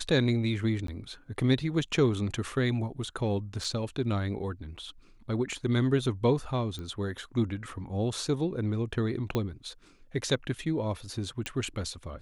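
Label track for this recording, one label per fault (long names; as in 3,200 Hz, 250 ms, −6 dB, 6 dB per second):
0.870000	0.880000	drop-out 13 ms
3.640000	3.640000	drop-out 4.3 ms
6.790000	6.790000	click −27 dBFS
9.350000	9.350000	click −15 dBFS
11.460000	11.460000	click −18 dBFS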